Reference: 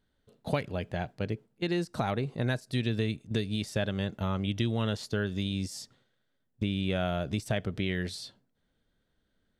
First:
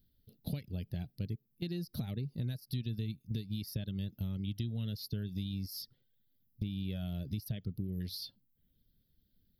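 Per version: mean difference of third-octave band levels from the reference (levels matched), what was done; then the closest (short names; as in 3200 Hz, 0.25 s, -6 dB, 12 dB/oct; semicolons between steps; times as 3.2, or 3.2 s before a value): 8.5 dB: spectral gain 7.77–8.01, 1300–7200 Hz -30 dB; reverb removal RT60 0.53 s; EQ curve 140 Hz 0 dB, 230 Hz -4 dB, 1100 Hz -26 dB, 5100 Hz -1 dB, 7900 Hz -28 dB, 12000 Hz +12 dB; compressor 3:1, threshold -42 dBFS, peak gain reduction 11 dB; gain +5.5 dB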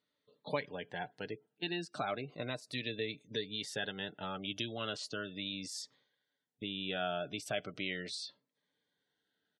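6.0 dB: weighting filter A; spectral gate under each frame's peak -25 dB strong; comb 6.8 ms, depth 35%; cascading phaser falling 0.37 Hz; gain -1.5 dB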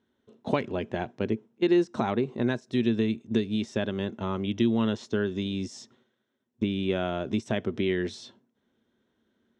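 4.5 dB: bell 4500 Hz +5 dB 0.61 oct; notch 4700 Hz, Q 5.6; vocal rider 2 s; speaker cabinet 110–6800 Hz, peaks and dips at 160 Hz -7 dB, 230 Hz +10 dB, 370 Hz +10 dB, 990 Hz +6 dB, 4300 Hz -8 dB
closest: third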